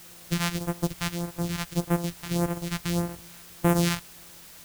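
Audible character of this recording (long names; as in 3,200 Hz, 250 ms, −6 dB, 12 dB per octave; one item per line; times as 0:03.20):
a buzz of ramps at a fixed pitch in blocks of 256 samples
phaser sweep stages 2, 1.7 Hz, lowest notch 390–4,300 Hz
a quantiser's noise floor 8 bits, dither triangular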